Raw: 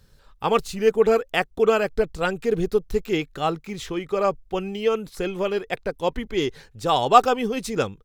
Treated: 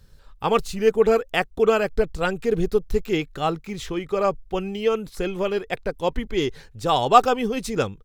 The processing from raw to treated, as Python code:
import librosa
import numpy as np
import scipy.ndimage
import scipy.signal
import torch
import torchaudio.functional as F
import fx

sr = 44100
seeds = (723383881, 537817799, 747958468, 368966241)

y = fx.low_shelf(x, sr, hz=91.0, db=6.5)